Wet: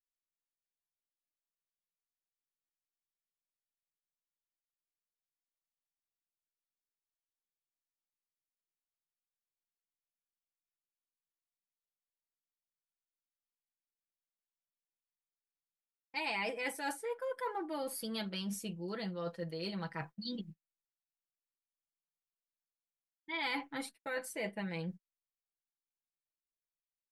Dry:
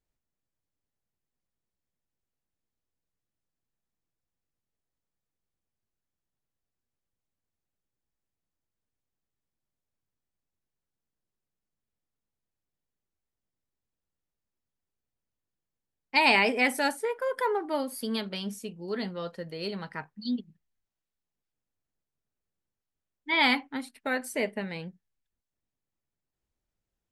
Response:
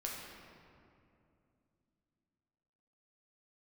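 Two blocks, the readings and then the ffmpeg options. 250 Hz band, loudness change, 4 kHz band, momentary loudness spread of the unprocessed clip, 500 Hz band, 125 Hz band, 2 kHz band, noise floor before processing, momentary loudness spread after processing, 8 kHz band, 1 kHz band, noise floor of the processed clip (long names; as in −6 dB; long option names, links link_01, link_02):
−8.5 dB, −11.0 dB, −11.0 dB, 16 LU, −9.0 dB, −2.0 dB, −12.5 dB, below −85 dBFS, 7 LU, −4.5 dB, −11.5 dB, below −85 dBFS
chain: -af "agate=range=-30dB:threshold=-47dB:ratio=16:detection=peak,aecho=1:1:6:0.8,areverse,acompressor=threshold=-39dB:ratio=4,areverse,volume=1dB"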